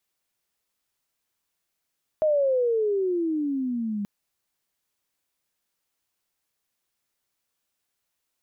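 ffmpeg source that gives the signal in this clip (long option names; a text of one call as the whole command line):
ffmpeg -f lavfi -i "aevalsrc='pow(10,(-18-8*t/1.83)/20)*sin(2*PI*632*1.83/(-20*log(2)/12)*(exp(-20*log(2)/12*t/1.83)-1))':duration=1.83:sample_rate=44100" out.wav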